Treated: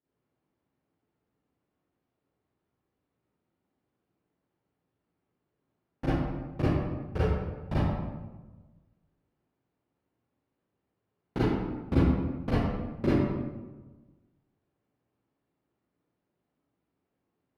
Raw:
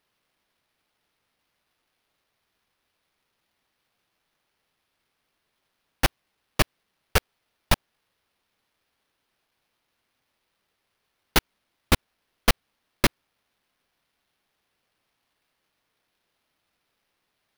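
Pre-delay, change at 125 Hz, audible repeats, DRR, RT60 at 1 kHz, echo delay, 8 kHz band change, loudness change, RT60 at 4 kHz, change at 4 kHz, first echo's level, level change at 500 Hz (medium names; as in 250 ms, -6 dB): 32 ms, +4.0 dB, no echo, -11.5 dB, 1.1 s, no echo, under -25 dB, -3.5 dB, 0.75 s, -19.5 dB, no echo, +0.5 dB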